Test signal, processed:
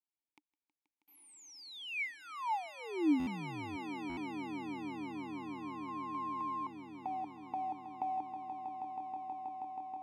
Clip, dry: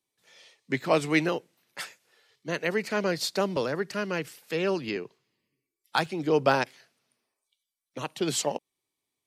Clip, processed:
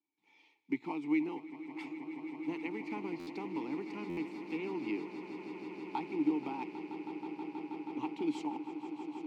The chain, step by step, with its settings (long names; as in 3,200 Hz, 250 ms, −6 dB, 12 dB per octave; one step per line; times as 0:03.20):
one scale factor per block 5 bits
downward compressor, threshold −28 dBFS
formant filter u
on a send: echo that builds up and dies away 160 ms, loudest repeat 8, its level −14.5 dB
on the sum: buffer that repeats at 0:03.19/0:04.09, samples 512, times 6
level +6 dB